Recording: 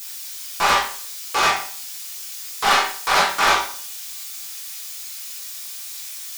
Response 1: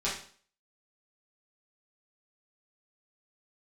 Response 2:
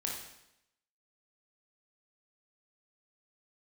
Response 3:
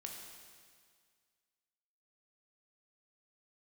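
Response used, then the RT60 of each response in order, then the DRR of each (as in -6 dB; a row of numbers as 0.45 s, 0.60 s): 1; 0.45 s, 0.85 s, 1.9 s; -9.0 dB, -2.0 dB, 0.5 dB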